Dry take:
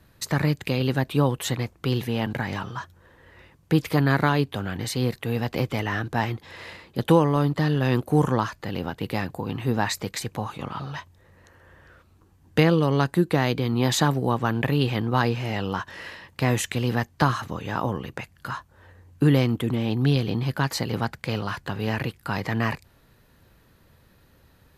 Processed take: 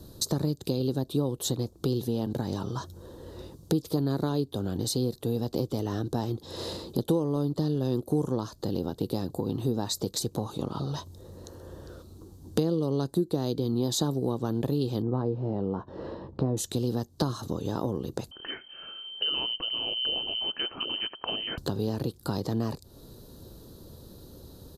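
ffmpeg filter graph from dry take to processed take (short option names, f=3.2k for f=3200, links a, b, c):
-filter_complex "[0:a]asettb=1/sr,asplit=3[a][b][c];[a]atrim=end=15.024[d];[b]atrim=start=15.02:end=16.57,asetpts=PTS-STARTPTS,afade=t=in:d=0.004:c=qsin,afade=t=out:st=1.546:d=0.004:c=qsin,lowpass=1.2k,asplit=2[e][f];[f]adelay=15,volume=-13dB[g];[e][g]amix=inputs=2:normalize=0,atrim=end_sample=68355[h];[c]atrim=start=16.566[i];[d][h]acrossfade=d=0.004:c1=hsin:c2=qsin[j];[j][i]acrossfade=d=0.004:c1=qsin:c2=hsin,asettb=1/sr,asplit=3[k][l][m];[k]atrim=end=18.314[n];[l]atrim=start=18.31:end=21.58,asetpts=PTS-STARTPTS,afade=t=in:d=0.004:c=qsin,afade=t=out:st=3.266:d=0.004:c=qsin,acompressor=mode=upward:threshold=-32dB:ratio=2.5:attack=3.2:release=140:knee=2.83:detection=peak,lowpass=f=2.7k:t=q:w=0.5098,lowpass=f=2.7k:t=q:w=0.6013,lowpass=f=2.7k:t=q:w=0.9,lowpass=f=2.7k:t=q:w=2.563,afreqshift=-3200,aecho=1:1:82:0.0708,atrim=end_sample=144207[o];[m]atrim=start=21.576[p];[n][o]acrossfade=d=0.004:c1=hsin:c2=qsin[q];[q][p]acrossfade=d=0.004:c1=qsin:c2=hsin,firequalizer=gain_entry='entry(150,0);entry(360,6);entry(730,-4);entry(1300,-10);entry(2100,-25);entry(3800,2)':delay=0.05:min_phase=1,acompressor=threshold=-39dB:ratio=3,volume=9dB"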